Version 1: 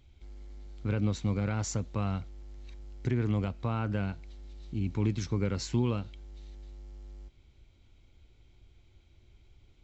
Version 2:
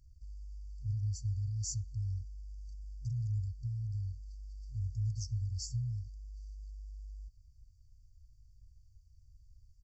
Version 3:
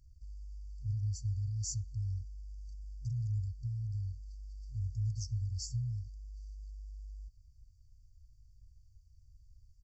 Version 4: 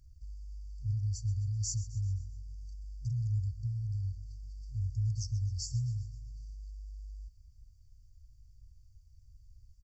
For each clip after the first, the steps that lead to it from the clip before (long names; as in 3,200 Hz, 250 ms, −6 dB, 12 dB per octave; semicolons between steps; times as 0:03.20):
brick-wall band-stop 130–4,500 Hz; comb filter 3.1 ms, depth 42%; level −2 dB
no processing that can be heard
repeating echo 130 ms, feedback 54%, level −16 dB; level +2.5 dB